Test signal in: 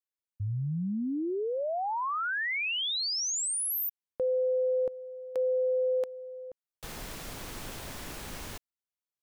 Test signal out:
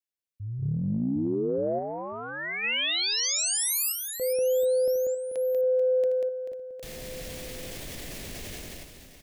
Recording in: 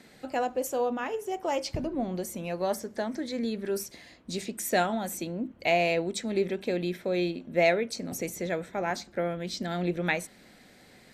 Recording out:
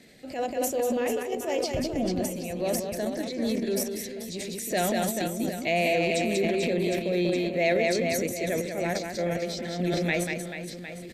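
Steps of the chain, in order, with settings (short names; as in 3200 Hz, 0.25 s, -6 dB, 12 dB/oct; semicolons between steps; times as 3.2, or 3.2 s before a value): band shelf 1100 Hz -10 dB 1.1 oct; reverse bouncing-ball echo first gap 0.19 s, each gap 1.3×, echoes 5; transient shaper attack -4 dB, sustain +7 dB; in parallel at -1 dB: level quantiser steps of 15 dB; on the sum: gain -3 dB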